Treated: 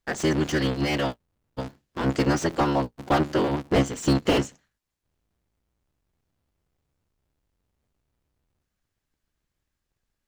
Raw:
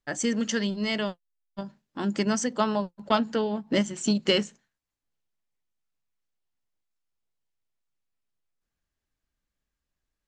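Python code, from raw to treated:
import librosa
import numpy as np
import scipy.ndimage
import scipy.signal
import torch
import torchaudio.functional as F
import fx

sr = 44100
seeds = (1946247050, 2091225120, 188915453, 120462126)

y = fx.cycle_switch(x, sr, every=3, mode='inverted')
y = fx.slew_limit(y, sr, full_power_hz=89.0)
y = y * 10.0 ** (3.5 / 20.0)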